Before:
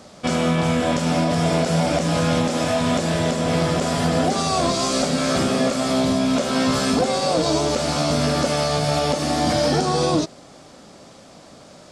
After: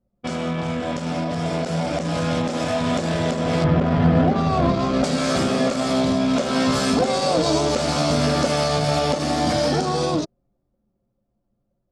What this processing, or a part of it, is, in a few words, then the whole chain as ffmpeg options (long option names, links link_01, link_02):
voice memo with heavy noise removal: -filter_complex "[0:a]asettb=1/sr,asplit=3[link_01][link_02][link_03];[link_01]atrim=end=3.644[link_04];[link_02]atrim=start=3.64:end=5.04,asetpts=PTS-STARTPTS,afade=type=in:duration=0.004:curve=qsin,afade=type=out:start_time=1.396:duration=0.004:curve=qsin,bass=frequency=250:gain=8,treble=frequency=4000:gain=-14[link_05];[link_03]atrim=start=5.036[link_06];[link_04][link_05]acrossfade=duration=0.004:curve1=hsin:curve2=qsin[link_07];[link_07][link_06]acrossfade=duration=0.004:curve1=qsin:curve2=hsin,anlmdn=251,dynaudnorm=framelen=280:gausssize=17:maxgain=11.5dB,volume=-5.5dB"